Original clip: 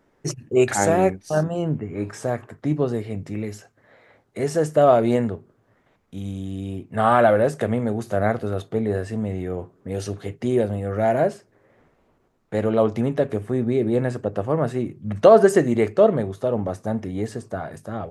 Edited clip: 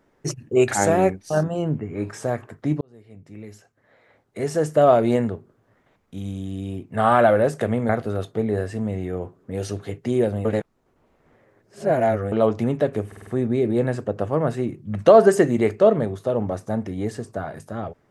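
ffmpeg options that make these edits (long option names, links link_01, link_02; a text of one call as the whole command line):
ffmpeg -i in.wav -filter_complex "[0:a]asplit=9[link_01][link_02][link_03][link_04][link_05][link_06][link_07][link_08][link_09];[link_01]atrim=end=2.81,asetpts=PTS-STARTPTS,afade=type=out:start_time=2.806:duration=0.004:curve=hsin[link_10];[link_02]atrim=start=2.81:end=7.892,asetpts=PTS-STARTPTS,afade=type=in:duration=1.95[link_11];[link_03]atrim=start=8.258:end=10.822[link_12];[link_04]atrim=start=10.818:end=12.692,asetpts=PTS-STARTPTS,areverse[link_13];[link_05]atrim=start=12.688:end=13.492[link_14];[link_06]atrim=start=13.438:end=13.492[link_15];[link_07]atrim=start=13.438:end=13.492[link_16];[link_08]atrim=start=13.438:end=13.492[link_17];[link_09]atrim=start=13.438[link_18];[link_10][link_11]concat=n=2:v=0:a=1[link_19];[link_19][link_12]acrossfade=duration=0.004:curve1=hsin:curve2=hsin[link_20];[link_20][link_13]acrossfade=duration=0.004:curve1=hsin:curve2=hsin[link_21];[link_21][link_14]acrossfade=duration=0.004:curve1=hsin:curve2=hsin[link_22];[link_22][link_15]acrossfade=duration=0.004:curve1=hsin:curve2=hsin[link_23];[link_23][link_16]acrossfade=duration=0.004:curve1=hsin:curve2=hsin[link_24];[link_24][link_17]acrossfade=duration=0.004:curve1=hsin:curve2=hsin[link_25];[link_25][link_18]acrossfade=duration=0.004:curve1=hsin:curve2=hsin" out.wav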